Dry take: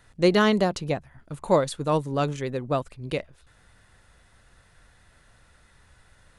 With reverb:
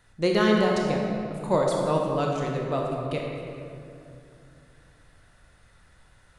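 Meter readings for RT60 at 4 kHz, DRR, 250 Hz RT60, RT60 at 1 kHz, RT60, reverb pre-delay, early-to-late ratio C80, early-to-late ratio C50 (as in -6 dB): 1.5 s, -1.0 dB, 3.4 s, 2.4 s, 2.6 s, 22 ms, 1.5 dB, 0.5 dB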